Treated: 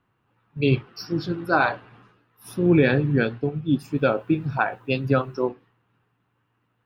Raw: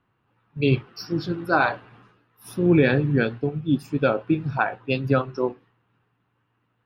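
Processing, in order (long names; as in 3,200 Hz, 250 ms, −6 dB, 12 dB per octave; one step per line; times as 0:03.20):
0:03.89–0:05.47: bit-depth reduction 12 bits, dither none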